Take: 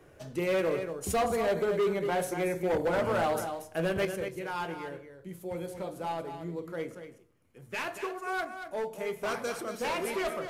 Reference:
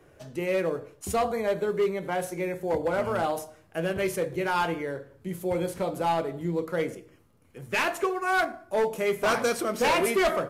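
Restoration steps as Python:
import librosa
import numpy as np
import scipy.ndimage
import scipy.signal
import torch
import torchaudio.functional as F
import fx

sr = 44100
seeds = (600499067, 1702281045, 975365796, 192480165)

y = fx.fix_declip(x, sr, threshold_db=-23.5)
y = fx.fix_echo_inverse(y, sr, delay_ms=233, level_db=-9.0)
y = fx.gain(y, sr, db=fx.steps((0.0, 0.0), (4.05, 9.0)))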